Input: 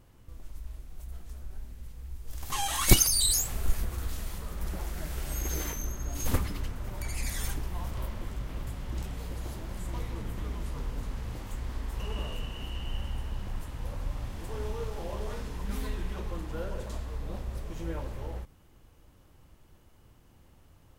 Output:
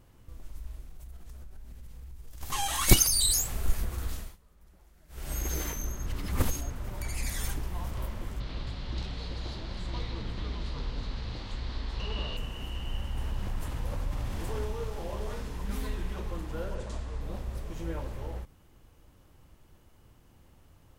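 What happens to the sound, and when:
0:00.89–0:02.41: downward compressor, threshold −40 dBFS
0:04.13–0:05.32: duck −24 dB, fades 0.24 s
0:06.06–0:06.70: reverse
0:08.40–0:12.37: low-pass with resonance 4,200 Hz, resonance Q 4.3
0:13.17–0:14.65: envelope flattener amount 50%
0:16.75–0:17.21: low-pass filter 9,300 Hz 24 dB per octave

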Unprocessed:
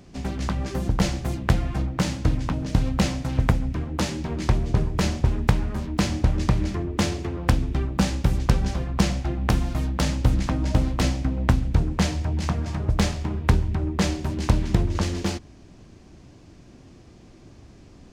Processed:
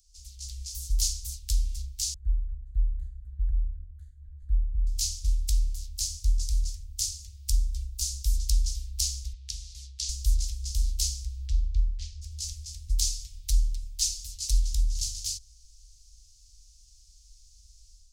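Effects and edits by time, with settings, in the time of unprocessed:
0:00.70–0:01.13: high-shelf EQ 8,900 Hz +4.5 dB
0:02.14–0:04.87: elliptic low-pass filter 1,600 Hz
0:05.97–0:08.24: parametric band 2,900 Hz −4 dB 1.8 octaves
0:09.33–0:10.09: band-pass filter 110–5,300 Hz
0:11.47–0:12.21: low-pass filter 3,400 Hz → 1,900 Hz
0:13.06–0:14.60: comb filter 6.6 ms
whole clip: inverse Chebyshev band-stop filter 220–1,100 Hz, stop band 80 dB; low-shelf EQ 110 Hz −5.5 dB; automatic gain control gain up to 8 dB

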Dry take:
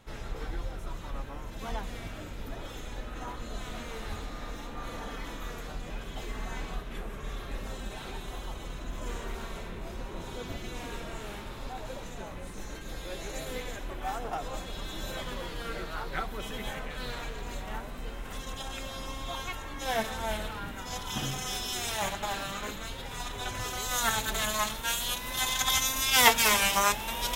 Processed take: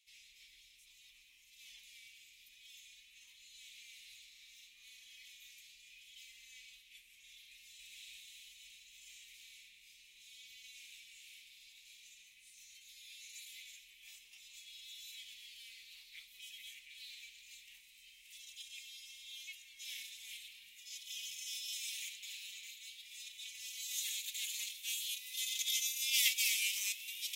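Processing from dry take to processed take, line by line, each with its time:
0:07.51–0:07.92: delay throw 280 ms, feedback 75%, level −1 dB
whole clip: elliptic high-pass filter 2,300 Hz, stop band 40 dB; level −7 dB

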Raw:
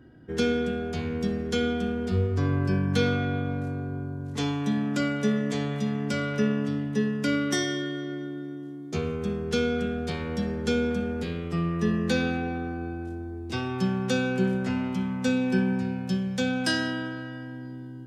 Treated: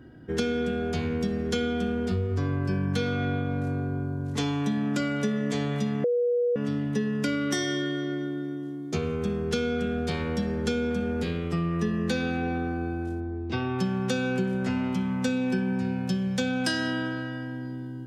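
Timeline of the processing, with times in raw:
0:06.04–0:06.56: beep over 484 Hz −17 dBFS
0:13.20–0:13.79: high-frequency loss of the air 190 metres
whole clip: downward compressor, threshold −27 dBFS; level +3.5 dB

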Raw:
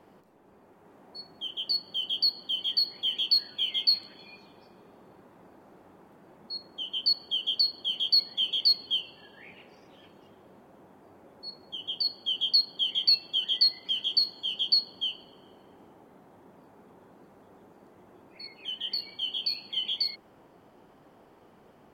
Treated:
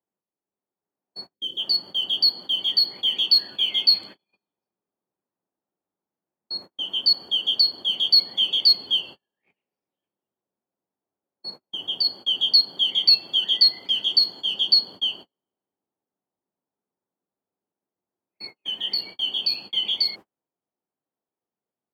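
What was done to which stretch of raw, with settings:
0:01.34–0:01.58: gain on a spectral selection 560–3,000 Hz −17 dB
whole clip: high-pass filter 94 Hz 6 dB per octave; noise gate −44 dBFS, range −42 dB; level +6.5 dB

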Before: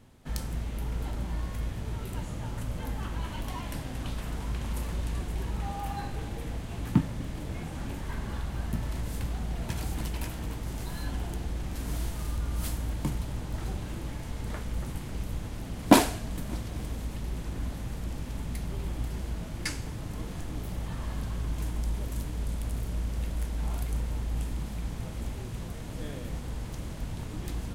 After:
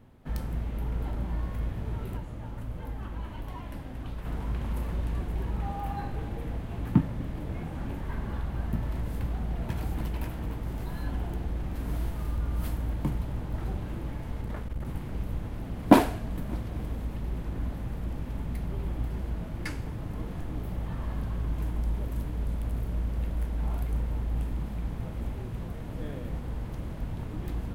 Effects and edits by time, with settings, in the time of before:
0:02.17–0:04.25: flanger 1.5 Hz, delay 1.9 ms, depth 2.1 ms, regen −69%
0:14.41–0:14.87: saturating transformer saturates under 75 Hz
whole clip: parametric band 7,100 Hz −14 dB 2.2 octaves; level +1.5 dB

